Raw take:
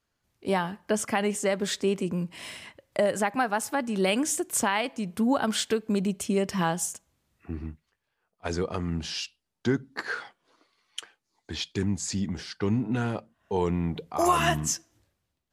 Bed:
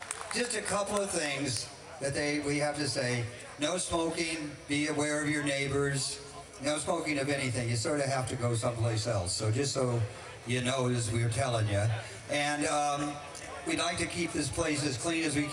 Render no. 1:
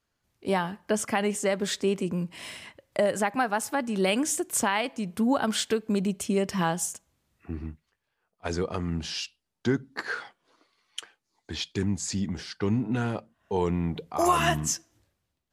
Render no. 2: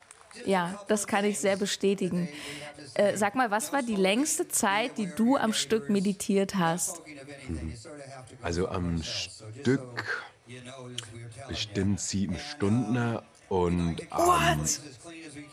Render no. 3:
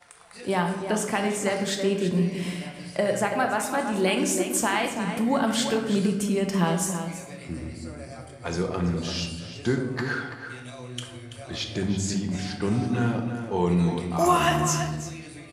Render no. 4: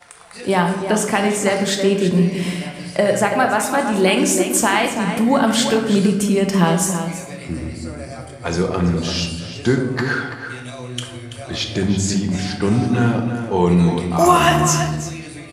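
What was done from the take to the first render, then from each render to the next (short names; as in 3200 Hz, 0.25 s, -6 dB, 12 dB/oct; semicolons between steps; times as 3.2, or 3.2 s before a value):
nothing audible
add bed -13.5 dB
outdoor echo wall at 57 m, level -8 dB; shoebox room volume 430 m³, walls mixed, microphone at 0.86 m
gain +8 dB; limiter -1 dBFS, peak gain reduction 1 dB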